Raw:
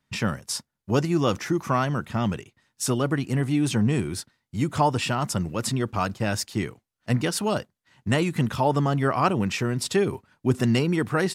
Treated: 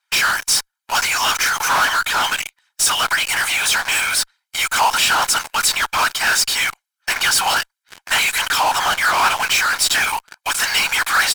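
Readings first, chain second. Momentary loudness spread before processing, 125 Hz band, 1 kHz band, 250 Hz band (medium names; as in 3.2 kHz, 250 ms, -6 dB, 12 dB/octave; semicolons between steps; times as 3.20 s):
8 LU, -18.5 dB, +10.0 dB, -16.5 dB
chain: steep high-pass 960 Hz 36 dB/octave; comb 1.3 ms, depth 73%; whisper effect; in parallel at -9 dB: fuzz box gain 50 dB, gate -53 dBFS; on the sum: trim +4 dB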